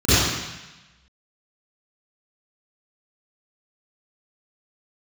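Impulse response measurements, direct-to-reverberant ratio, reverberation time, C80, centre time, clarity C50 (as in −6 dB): −20.0 dB, 1.0 s, −3.5 dB, 133 ms, −10.5 dB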